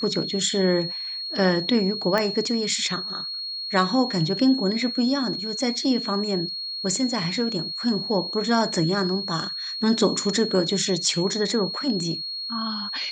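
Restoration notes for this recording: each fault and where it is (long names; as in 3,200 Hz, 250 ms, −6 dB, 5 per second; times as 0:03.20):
whistle 4,300 Hz −29 dBFS
0:02.18: click −10 dBFS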